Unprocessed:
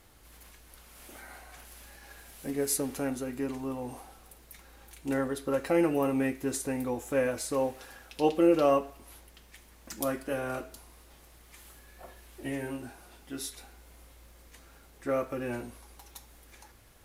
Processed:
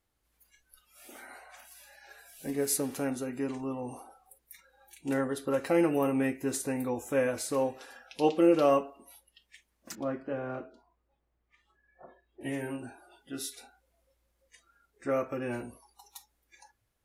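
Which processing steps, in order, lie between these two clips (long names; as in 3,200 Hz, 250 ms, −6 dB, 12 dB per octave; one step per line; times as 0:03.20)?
noise reduction from a noise print of the clip's start 21 dB
0:09.95–0:12.41: head-to-tape spacing loss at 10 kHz 38 dB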